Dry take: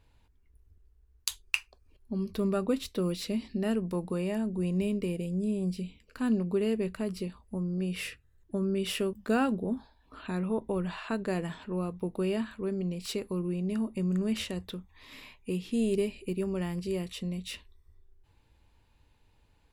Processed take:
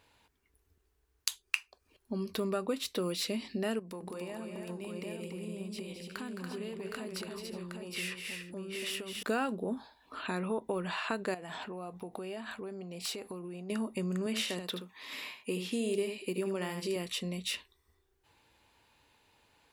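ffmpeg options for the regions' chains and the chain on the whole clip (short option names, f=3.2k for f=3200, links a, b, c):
-filter_complex "[0:a]asettb=1/sr,asplit=3[a][b][c];[a]atrim=end=3.794[d];[b]atrim=start=3.79:end=9.23,asetpts=PTS-STARTPTS,afade=t=in:d=0.004:c=qsin,afade=t=out:st=5.436:d=0.004:c=qsin,acompressor=threshold=-39dB:ratio=10:attack=3.2:release=140:knee=1:detection=peak,aecho=1:1:215|285|364|765:0.376|0.531|0.15|0.562,atrim=end_sample=239904[e];[c]atrim=start=9.226[f];[d][e]acrossfade=d=0.004:c1=hsin:c2=qsin[g];[g][f]acrossfade=d=0.004:c1=qsin:c2=hsin,asettb=1/sr,asplit=3[h][i][j];[h]atrim=end=11.344[k];[i]atrim=start=11.34:end=13.7,asetpts=PTS-STARTPTS,afade=t=in:d=0.004:c=qsin,afade=t=out:st=2.356:d=0.004:c=qsin,equalizer=f=740:w=4:g=10,acompressor=threshold=-38dB:ratio=16:attack=3.2:release=140:knee=1:detection=peak[l];[j]atrim=start=13.696[m];[k][l]acrossfade=d=0.004:c1=hsin:c2=qsin[n];[n][m]acrossfade=d=0.004:c1=qsin:c2=hsin,asettb=1/sr,asplit=3[o][p][q];[o]atrim=end=14.264[r];[p]atrim=start=14.26:end=16.96,asetpts=PTS-STARTPTS,afade=t=in:d=0.004:c=qsin,afade=t=out:st=2.696:d=0.004:c=qsin,highpass=140,aecho=1:1:77:0.376,atrim=end_sample=119070[s];[q]atrim=start=16.956[t];[r][s]acrossfade=d=0.004:c1=hsin:c2=qsin[u];[u][t]acrossfade=d=0.004:c1=qsin:c2=hsin,highpass=f=540:p=1,acompressor=threshold=-39dB:ratio=2.5,volume=7dB"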